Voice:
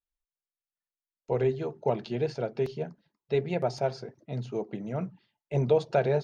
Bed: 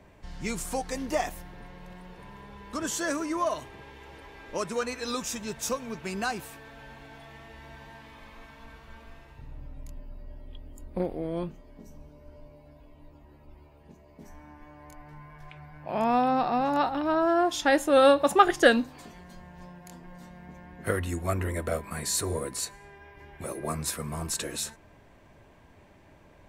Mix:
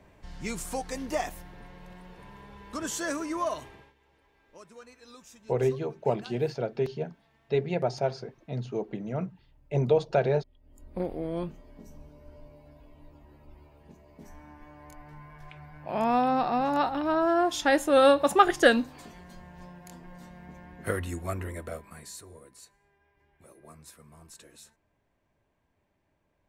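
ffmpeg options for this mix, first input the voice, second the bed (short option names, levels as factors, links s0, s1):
-filter_complex "[0:a]adelay=4200,volume=1.06[s0];[1:a]volume=6.68,afade=t=out:st=3.67:d=0.27:silence=0.141254,afade=t=in:st=10.6:d=0.52:silence=0.11885,afade=t=out:st=20.65:d=1.6:silence=0.11885[s1];[s0][s1]amix=inputs=2:normalize=0"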